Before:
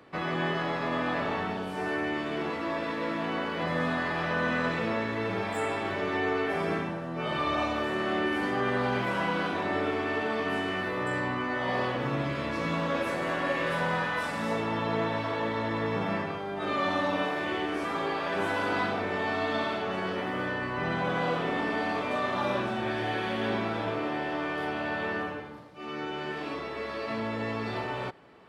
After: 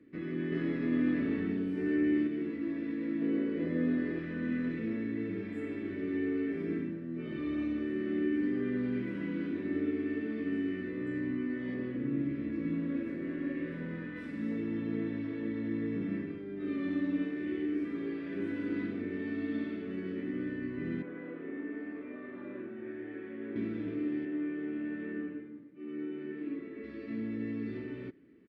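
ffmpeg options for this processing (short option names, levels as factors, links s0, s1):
-filter_complex "[0:a]asettb=1/sr,asplit=3[s0][s1][s2];[s0]atrim=end=3.214[s3];[s1]atrim=start=3.21:end=4.19,asetpts=PTS-STARTPTS,afade=t=in:d=0.004:c=qsin,afade=t=out:st=0.976:d=0.004:c=qsin,equalizer=f=480:t=o:w=1.2:g=9[s4];[s2]atrim=start=4.186[s5];[s3][s4]acrossfade=d=0.004:c1=hsin:c2=qsin[s6];[s6][s5]acrossfade=d=0.004:c1=qsin:c2=hsin,asettb=1/sr,asplit=3[s7][s8][s9];[s7]atrim=end=11.744[s10];[s8]atrim=start=11.74:end=14.16,asetpts=PTS-STARTPTS,afade=t=in:d=0.004:c=qsin,afade=t=out:st=2.416:d=0.004:c=qsin,highshelf=f=3200:g=-8[s11];[s9]atrim=start=14.156[s12];[s10][s11]acrossfade=d=0.004:c1=hsin:c2=qsin[s13];[s13][s12]acrossfade=d=0.004:c1=qsin:c2=hsin,asettb=1/sr,asplit=3[s14][s15][s16];[s14]atrim=end=21.024[s17];[s15]atrim=start=21.02:end=23.56,asetpts=PTS-STARTPTS,afade=t=in:d=0.004:c=qsin,afade=t=out:st=2.536:d=0.004:c=qsin,acrossover=split=360 2200:gain=0.2 1 0.0891[s18][s19][s20];[s18][s19][s20]amix=inputs=3:normalize=0[s21];[s16]atrim=start=23.556[s22];[s17][s21]acrossfade=d=0.004:c1=hsin:c2=qsin[s23];[s23][s22]acrossfade=d=0.004:c1=qsin:c2=hsin,asettb=1/sr,asplit=3[s24][s25][s26];[s24]atrim=end=24.254[s27];[s25]atrim=start=24.25:end=26.84,asetpts=PTS-STARTPTS,afade=t=in:d=0.004:c=qsin,afade=t=out:st=2.586:d=0.004:c=qsin,highpass=150,lowpass=2700[s28];[s26]atrim=start=26.836[s29];[s27][s28]acrossfade=d=0.004:c1=hsin:c2=qsin[s30];[s30][s29]acrossfade=d=0.004:c1=qsin:c2=hsin,asplit=3[s31][s32][s33];[s31]atrim=end=0.522[s34];[s32]atrim=start=0.518:end=2.272,asetpts=PTS-STARTPTS,volume=1.68[s35];[s33]atrim=start=2.268[s36];[s34][s35]acrossfade=d=0.004:c1=hsin:c2=hsin[s37];[s37][s36]acrossfade=d=0.004:c1=hsin:c2=hsin,firequalizer=gain_entry='entry(150,0);entry(280,12);entry(500,-7);entry(770,-25);entry(1900,-3);entry(3000,-12);entry(6600,-19)':delay=0.05:min_phase=1,volume=0.422"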